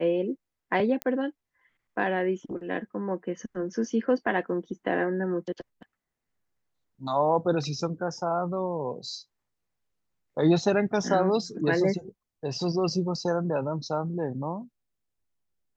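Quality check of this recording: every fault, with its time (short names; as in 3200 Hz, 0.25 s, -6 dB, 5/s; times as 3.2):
1.02 pop -15 dBFS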